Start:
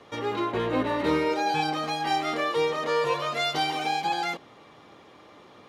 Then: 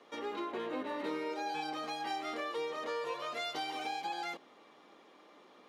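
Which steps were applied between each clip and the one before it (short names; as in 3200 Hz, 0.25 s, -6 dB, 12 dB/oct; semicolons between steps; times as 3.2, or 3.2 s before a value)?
HPF 210 Hz 24 dB/oct; compressor 2.5:1, threshold -28 dBFS, peak gain reduction 5.5 dB; gain -8 dB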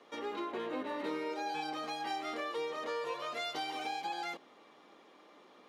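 nothing audible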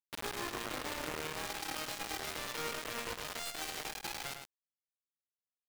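limiter -33.5 dBFS, peak gain reduction 7 dB; requantised 6-bit, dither none; outdoor echo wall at 18 m, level -6 dB; gain +1 dB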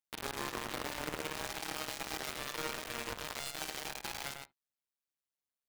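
on a send at -12 dB: air absorption 400 m + reverb, pre-delay 10 ms; on the sum: AM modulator 140 Hz, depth 80%; gain +3.5 dB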